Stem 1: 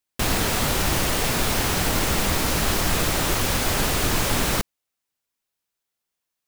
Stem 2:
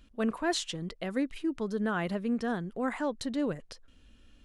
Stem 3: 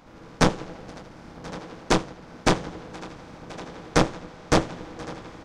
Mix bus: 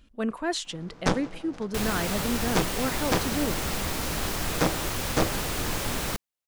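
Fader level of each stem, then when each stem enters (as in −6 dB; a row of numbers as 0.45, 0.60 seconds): −7.5, +1.0, −5.5 decibels; 1.55, 0.00, 0.65 seconds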